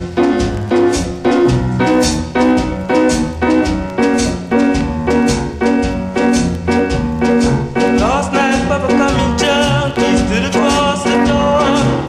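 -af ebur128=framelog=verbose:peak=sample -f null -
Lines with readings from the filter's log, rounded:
Integrated loudness:
  I:         -13.7 LUFS
  Threshold: -23.7 LUFS
Loudness range:
  LRA:         1.6 LU
  Threshold: -33.9 LUFS
  LRA low:   -14.6 LUFS
  LRA high:  -13.1 LUFS
Sample peak:
  Peak:       -2.5 dBFS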